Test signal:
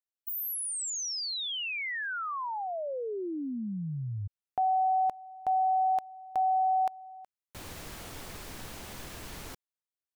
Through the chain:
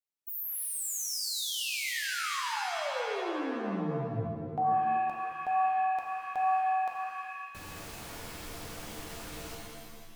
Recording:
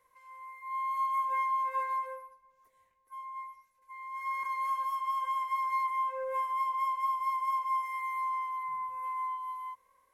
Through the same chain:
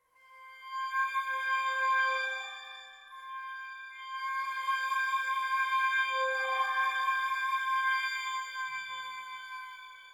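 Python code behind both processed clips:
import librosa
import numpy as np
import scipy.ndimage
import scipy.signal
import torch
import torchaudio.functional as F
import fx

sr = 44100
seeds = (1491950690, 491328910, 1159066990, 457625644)

y = fx.rev_shimmer(x, sr, seeds[0], rt60_s=1.6, semitones=7, shimmer_db=-2, drr_db=-0.5)
y = y * librosa.db_to_amplitude(-4.5)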